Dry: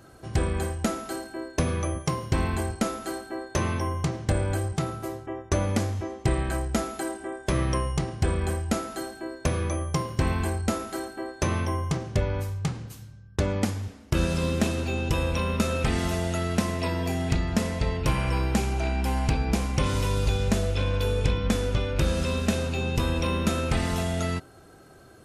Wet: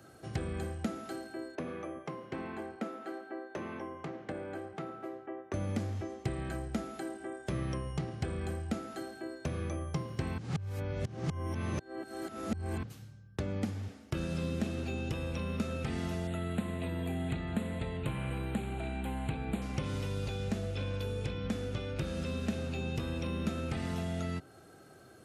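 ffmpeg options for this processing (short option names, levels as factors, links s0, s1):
-filter_complex "[0:a]asettb=1/sr,asplit=3[s0][s1][s2];[s0]atrim=end=1.554[s3];[s1]atrim=start=1.55:end=5.54,asetpts=PTS-STARTPTS,afade=t=in:d=0.004:c=qsin,afade=t=out:st=3.986:d=0.004:c=qsin,acrossover=split=230 2800:gain=0.0794 1 0.0708[s4][s5][s6];[s4][s5][s6]amix=inputs=3:normalize=0[s7];[s2]atrim=start=5.536[s8];[s3][s7]acrossfade=d=0.004:c1=hsin:c2=qsin[s9];[s9][s8]acrossfade=d=0.004:c1=qsin:c2=hsin,asettb=1/sr,asplit=3[s10][s11][s12];[s10]atrim=end=16.274[s13];[s11]atrim=start=16.27:end=19.62,asetpts=PTS-STARTPTS,afade=t=in:d=0.004:c=qsin,afade=t=out:st=3.346:d=0.004:c=qsin,asuperstop=centerf=5500:order=8:qfactor=1.8[s14];[s12]atrim=start=19.616[s15];[s13][s14]acrossfade=d=0.004:c1=hsin:c2=qsin[s16];[s16][s15]acrossfade=d=0.004:c1=qsin:c2=hsin,asplit=3[s17][s18][s19];[s17]atrim=end=10.382[s20];[s18]atrim=start=10.378:end=12.832,asetpts=PTS-STARTPTS,areverse[s21];[s19]atrim=start=12.828[s22];[s20][s21]acrossfade=d=0.004:c1=hsin:c2=hsin[s23];[s23][s22]acrossfade=d=0.004:c1=hsin:c2=hsin,acrossover=split=300|4700[s24][s25][s26];[s24]acompressor=threshold=0.0562:ratio=4[s27];[s25]acompressor=threshold=0.0141:ratio=4[s28];[s26]acompressor=threshold=0.00178:ratio=4[s29];[s27][s28][s29]amix=inputs=3:normalize=0,highpass=93,bandreject=f=1000:w=11,volume=0.631"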